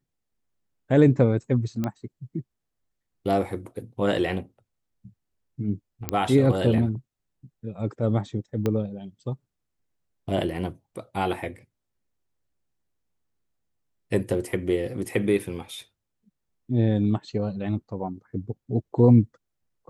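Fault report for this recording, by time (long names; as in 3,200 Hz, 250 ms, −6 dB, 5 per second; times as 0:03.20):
0:01.84: click −15 dBFS
0:06.09: click −9 dBFS
0:08.66: click −13 dBFS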